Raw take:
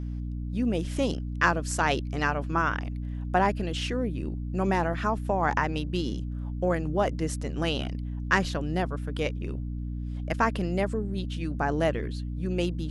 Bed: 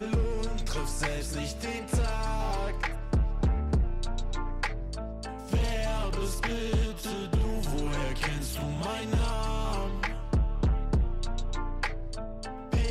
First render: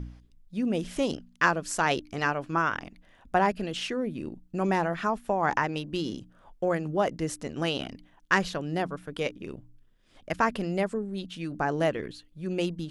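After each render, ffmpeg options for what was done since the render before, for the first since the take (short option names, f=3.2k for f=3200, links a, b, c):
-af "bandreject=f=60:t=h:w=4,bandreject=f=120:t=h:w=4,bandreject=f=180:t=h:w=4,bandreject=f=240:t=h:w=4,bandreject=f=300:t=h:w=4"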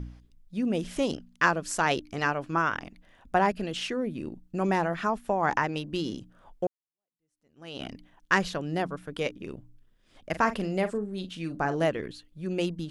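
-filter_complex "[0:a]asettb=1/sr,asplit=3[a][b][c];[a]atrim=end=10.294[d];[b]atrim=start=10.29:end=11.85,asetpts=PTS-STARTPTS,afade=t=in:d=0.004:c=qsin,afade=t=out:st=1.556:d=0.004:c=qsin,asplit=2[e][f];[f]adelay=43,volume=-12dB[g];[e][g]amix=inputs=2:normalize=0,atrim=end_sample=68796[h];[c]atrim=start=11.846[i];[d][h]acrossfade=d=0.004:c1=hsin:c2=qsin[j];[j][i]acrossfade=d=0.004:c1=qsin:c2=hsin,asplit=2[k][l];[k]atrim=end=6.67,asetpts=PTS-STARTPTS,afade=t=out:st=6.666:d=0.004:c=hsin[m];[l]atrim=start=6.67,asetpts=PTS-STARTPTS,afade=t=in:d=1.18:c=exp[n];[m][n]concat=n=2:v=0:a=1"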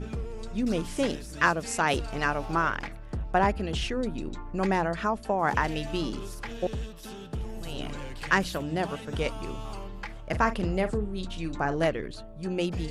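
-filter_complex "[1:a]volume=-7.5dB[a];[0:a][a]amix=inputs=2:normalize=0"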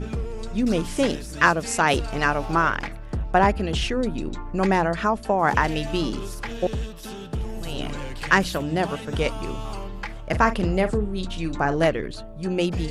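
-af "volume=5.5dB"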